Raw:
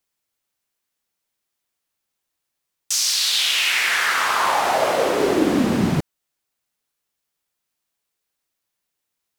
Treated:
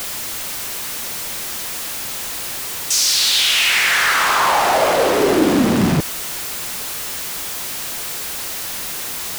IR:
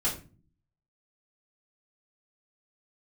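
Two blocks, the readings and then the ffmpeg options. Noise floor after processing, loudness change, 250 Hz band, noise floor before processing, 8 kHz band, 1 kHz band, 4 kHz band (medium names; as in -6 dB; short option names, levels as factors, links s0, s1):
-27 dBFS, +0.5 dB, +3.5 dB, -80 dBFS, +6.5 dB, +4.0 dB, +4.5 dB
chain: -af "aeval=exprs='val(0)+0.5*0.1*sgn(val(0))':c=same,acrusher=bits=4:mode=log:mix=0:aa=0.000001,volume=1.12"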